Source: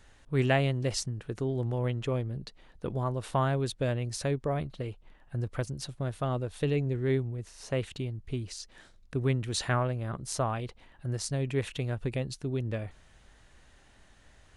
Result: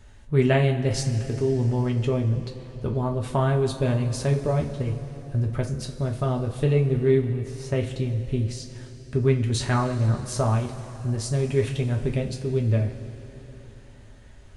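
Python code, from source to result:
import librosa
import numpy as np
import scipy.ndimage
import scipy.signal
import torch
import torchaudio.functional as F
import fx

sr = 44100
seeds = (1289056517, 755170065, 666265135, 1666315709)

y = fx.low_shelf(x, sr, hz=360.0, db=8.5)
y = fx.rev_double_slope(y, sr, seeds[0], early_s=0.26, late_s=4.0, knee_db=-18, drr_db=0.5)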